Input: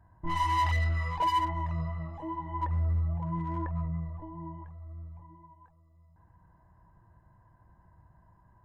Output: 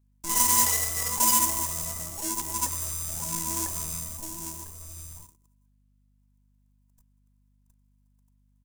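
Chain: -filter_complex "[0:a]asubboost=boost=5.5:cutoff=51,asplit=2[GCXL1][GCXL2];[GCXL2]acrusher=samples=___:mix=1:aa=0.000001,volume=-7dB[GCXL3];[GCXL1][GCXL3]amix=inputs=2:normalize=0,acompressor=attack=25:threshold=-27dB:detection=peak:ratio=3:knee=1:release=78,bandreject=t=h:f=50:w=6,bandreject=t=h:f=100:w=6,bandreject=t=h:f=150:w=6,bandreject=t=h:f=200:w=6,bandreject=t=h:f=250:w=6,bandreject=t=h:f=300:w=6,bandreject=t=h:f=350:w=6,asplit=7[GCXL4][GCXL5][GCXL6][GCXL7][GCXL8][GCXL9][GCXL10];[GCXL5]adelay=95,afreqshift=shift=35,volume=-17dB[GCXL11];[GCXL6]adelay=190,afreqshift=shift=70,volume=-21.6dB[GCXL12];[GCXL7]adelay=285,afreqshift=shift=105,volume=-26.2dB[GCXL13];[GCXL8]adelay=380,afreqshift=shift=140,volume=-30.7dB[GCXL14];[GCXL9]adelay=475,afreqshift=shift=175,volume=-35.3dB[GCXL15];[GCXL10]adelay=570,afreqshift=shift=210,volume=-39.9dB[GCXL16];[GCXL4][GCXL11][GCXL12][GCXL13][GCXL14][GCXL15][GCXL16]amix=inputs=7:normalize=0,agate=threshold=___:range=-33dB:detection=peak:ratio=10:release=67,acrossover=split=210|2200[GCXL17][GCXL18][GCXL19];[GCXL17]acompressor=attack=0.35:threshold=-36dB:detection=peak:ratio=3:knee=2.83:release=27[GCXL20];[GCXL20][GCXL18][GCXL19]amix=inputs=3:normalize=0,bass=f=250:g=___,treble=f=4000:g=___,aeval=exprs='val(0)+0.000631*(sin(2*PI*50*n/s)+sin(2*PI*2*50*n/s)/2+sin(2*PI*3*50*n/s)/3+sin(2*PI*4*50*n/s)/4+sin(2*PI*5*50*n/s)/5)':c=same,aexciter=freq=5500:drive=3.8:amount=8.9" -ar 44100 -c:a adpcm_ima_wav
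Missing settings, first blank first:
36, -45dB, -6, 13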